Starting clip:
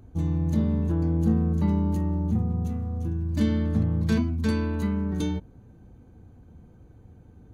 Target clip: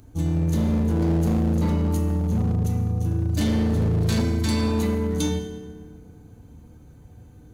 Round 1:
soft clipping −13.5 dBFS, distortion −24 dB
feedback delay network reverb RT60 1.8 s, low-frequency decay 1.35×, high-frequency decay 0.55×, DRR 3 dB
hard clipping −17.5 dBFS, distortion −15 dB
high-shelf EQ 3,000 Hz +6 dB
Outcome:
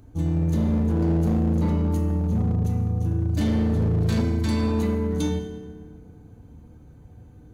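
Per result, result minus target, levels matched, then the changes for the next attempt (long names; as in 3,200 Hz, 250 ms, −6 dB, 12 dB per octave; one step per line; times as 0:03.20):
soft clipping: distortion +21 dB; 8,000 Hz band −7.0 dB
change: soft clipping −2 dBFS, distortion −45 dB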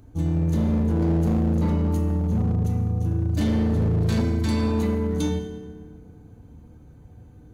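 8,000 Hz band −6.5 dB
change: high-shelf EQ 3,000 Hz +14 dB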